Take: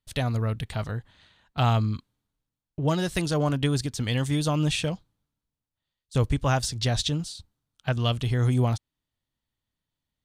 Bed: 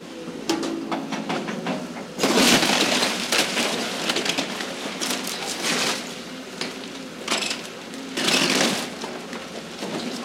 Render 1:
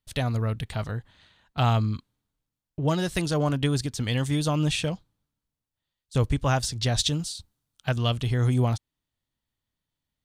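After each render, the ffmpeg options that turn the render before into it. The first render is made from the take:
-filter_complex "[0:a]asettb=1/sr,asplit=3[a][b][c];[a]atrim=end=6.984[d];[b]atrim=start=6.98:end=7.99,asetpts=PTS-STARTPTS,afade=t=in:d=0.004:c=qsin,afade=t=out:st=1.006:d=0.004:c=qsin,highshelf=f=4.8k:g=7[e];[c]atrim=start=7.986[f];[d][e]acrossfade=d=0.004:c1=hsin:c2=qsin[g];[g][f]acrossfade=d=0.004:c1=qsin:c2=hsin"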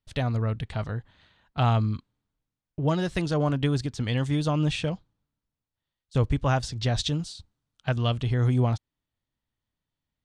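-af "lowpass=8k,highshelf=f=3.9k:g=-8"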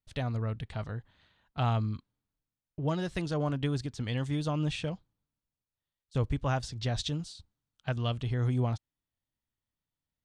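-af "volume=-6dB"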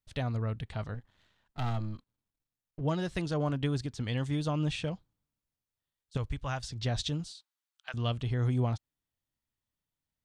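-filter_complex "[0:a]asettb=1/sr,asplit=3[a][b][c];[a]atrim=end=0.944[d];[b]atrim=start=0.94:end=2.81,asetpts=PTS-STARTPTS,afade=t=in:d=0.004:c=qsin,afade=t=out:st=1.866:d=0.004:c=qsin,aeval=exprs='if(lt(val(0),0),0.251*val(0),val(0))':c=same[e];[c]atrim=start=2.806[f];[d][e]acrossfade=d=0.004:c1=hsin:c2=qsin[g];[g][f]acrossfade=d=0.004:c1=qsin:c2=hsin,asettb=1/sr,asplit=3[h][i][j];[h]atrim=end=6.174[k];[i]atrim=start=6.17:end=6.71,asetpts=PTS-STARTPTS,afade=t=in:d=0.004:c=qsin,afade=t=out:st=0.536:d=0.004:c=qsin,equalizer=f=300:w=0.42:g=-9.5[l];[j]atrim=start=6.706[m];[k][l]acrossfade=d=0.004:c1=hsin:c2=qsin[n];[n][m]acrossfade=d=0.004:c1=qsin:c2=hsin,asettb=1/sr,asplit=3[o][p][q];[o]atrim=end=7.324[r];[p]atrim=start=7.32:end=7.94,asetpts=PTS-STARTPTS,afade=t=in:d=0.004:c=qsin,afade=t=out:st=0.616:d=0.004:c=qsin,highpass=1.2k[s];[q]atrim=start=7.936[t];[r][s]acrossfade=d=0.004:c1=hsin:c2=qsin[u];[u][t]acrossfade=d=0.004:c1=qsin:c2=hsin"

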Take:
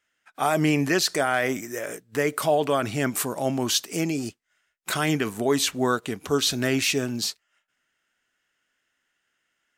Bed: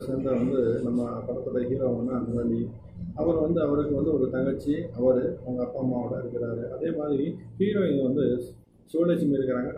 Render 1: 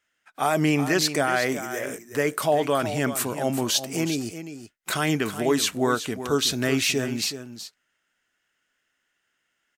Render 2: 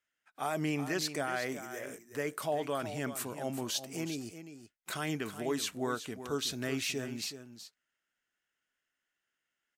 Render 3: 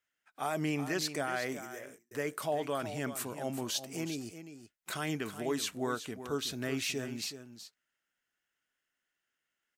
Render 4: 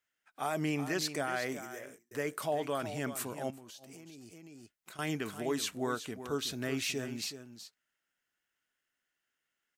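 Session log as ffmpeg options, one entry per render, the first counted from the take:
-af "aecho=1:1:373:0.282"
-af "volume=-11.5dB"
-filter_complex "[0:a]asettb=1/sr,asplit=3[a][b][c];[a]atrim=end=6.114[d];[b]atrim=start=6.11:end=6.77,asetpts=PTS-STARTPTS,afade=t=in:d=0.004:c=qsin,afade=t=out:st=0.656:d=0.004:c=qsin,equalizer=f=6.3k:t=o:w=1.8:g=-3[e];[c]atrim=start=6.766[f];[d][e]acrossfade=d=0.004:c1=hsin:c2=qsin[g];[g][f]acrossfade=d=0.004:c1=qsin:c2=hsin,asplit=2[h][i];[h]atrim=end=2.11,asetpts=PTS-STARTPTS,afade=t=out:st=1.63:d=0.48[j];[i]atrim=start=2.11,asetpts=PTS-STARTPTS,afade=t=in:d=0.004:c=hsin[k];[j][k]concat=n=2:v=0:a=1"
-filter_complex "[0:a]asettb=1/sr,asplit=3[a][b][c];[a]atrim=end=3.504[d];[b]atrim=start=3.5:end=4.99,asetpts=PTS-STARTPTS,afade=t=in:d=0.004:c=qsin,afade=t=out:st=1.486:d=0.004:c=qsin,acompressor=threshold=-47dB:ratio=16:attack=3.2:release=140:knee=1:detection=peak[e];[c]atrim=start=4.986[f];[d][e]acrossfade=d=0.004:c1=hsin:c2=qsin[g];[g][f]acrossfade=d=0.004:c1=qsin:c2=hsin"

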